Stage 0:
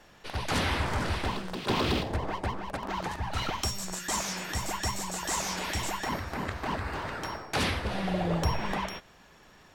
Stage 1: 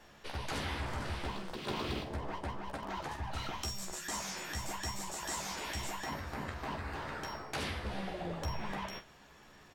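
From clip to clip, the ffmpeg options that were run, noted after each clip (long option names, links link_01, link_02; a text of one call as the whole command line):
ffmpeg -i in.wav -filter_complex "[0:a]acompressor=threshold=-38dB:ratio=2,asplit=2[link_01][link_02];[link_02]aecho=0:1:14|46:0.531|0.299[link_03];[link_01][link_03]amix=inputs=2:normalize=0,volume=-3.5dB" out.wav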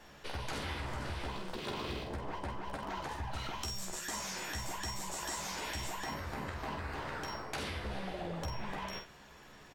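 ffmpeg -i in.wav -filter_complex "[0:a]acompressor=threshold=-39dB:ratio=3,asplit=2[link_01][link_02];[link_02]adelay=48,volume=-8dB[link_03];[link_01][link_03]amix=inputs=2:normalize=0,volume=2dB" out.wav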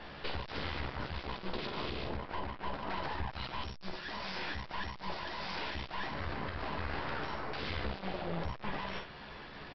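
ffmpeg -i in.wav -af "alimiter=level_in=10.5dB:limit=-24dB:level=0:latency=1:release=334,volume=-10.5dB,aresample=11025,aeval=exprs='clip(val(0),-1,0.00141)':channel_layout=same,aresample=44100,volume=9.5dB" out.wav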